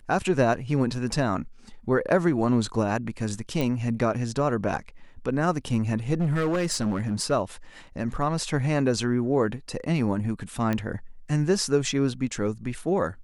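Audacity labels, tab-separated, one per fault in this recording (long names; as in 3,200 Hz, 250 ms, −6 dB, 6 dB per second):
3.610000	3.610000	click
6.130000	7.320000	clipping −21 dBFS
10.730000	10.730000	click −14 dBFS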